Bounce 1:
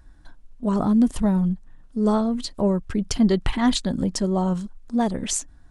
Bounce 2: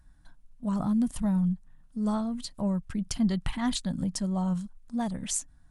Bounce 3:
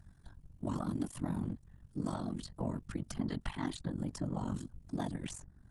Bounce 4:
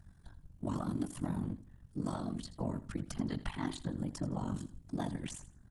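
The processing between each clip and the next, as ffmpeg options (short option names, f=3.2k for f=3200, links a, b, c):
-af "equalizer=f=160:t=o:w=0.67:g=6,equalizer=f=400:t=o:w=0.67:g=-11,equalizer=f=10k:t=o:w=0.67:g=7,volume=-8dB"
-filter_complex "[0:a]afftfilt=real='hypot(re,im)*cos(2*PI*random(0))':imag='hypot(re,im)*sin(2*PI*random(1))':win_size=512:overlap=0.75,aeval=exprs='val(0)*sin(2*PI*23*n/s)':c=same,acrossover=split=630|1700[a][b][c];[a]acompressor=threshold=-43dB:ratio=4[d];[b]acompressor=threshold=-53dB:ratio=4[e];[c]acompressor=threshold=-58dB:ratio=4[f];[d][e][f]amix=inputs=3:normalize=0,volume=8dB"
-af "aecho=1:1:82|164|246:0.178|0.0462|0.012"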